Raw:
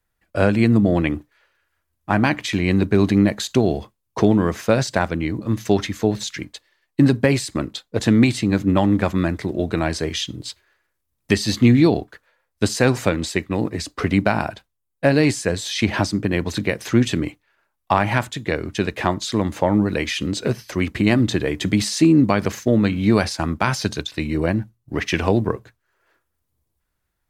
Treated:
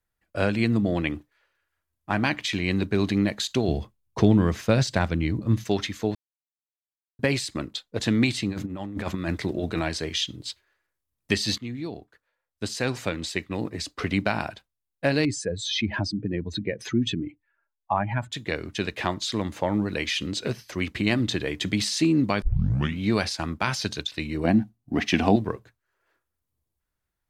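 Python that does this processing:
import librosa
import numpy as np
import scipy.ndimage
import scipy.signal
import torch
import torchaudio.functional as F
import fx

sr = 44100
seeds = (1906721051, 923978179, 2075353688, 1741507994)

y = fx.low_shelf(x, sr, hz=200.0, db=11.5, at=(3.68, 5.64))
y = fx.over_compress(y, sr, threshold_db=-21.0, ratio=-0.5, at=(8.49, 9.87), fade=0.02)
y = fx.spec_expand(y, sr, power=1.9, at=(15.25, 18.32))
y = fx.small_body(y, sr, hz=(240.0, 720.0), ring_ms=35, db=14, at=(24.44, 25.36))
y = fx.edit(y, sr, fx.silence(start_s=6.15, length_s=1.04),
    fx.fade_in_from(start_s=11.58, length_s=2.11, floor_db=-16.0),
    fx.tape_start(start_s=22.42, length_s=0.56), tone=tone)
y = fx.dynamic_eq(y, sr, hz=3600.0, q=0.72, threshold_db=-39.0, ratio=4.0, max_db=7)
y = F.gain(torch.from_numpy(y), -7.5).numpy()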